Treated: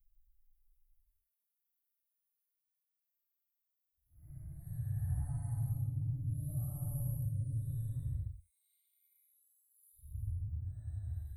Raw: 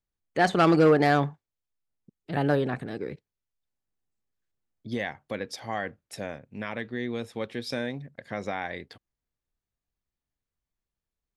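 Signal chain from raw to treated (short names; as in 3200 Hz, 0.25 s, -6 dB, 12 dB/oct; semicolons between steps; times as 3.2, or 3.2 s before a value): random spectral dropouts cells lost 55%; Paulstretch 11×, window 0.05 s, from 1.9; inverse Chebyshev band-stop 190–5700 Hz, stop band 50 dB; gain +16.5 dB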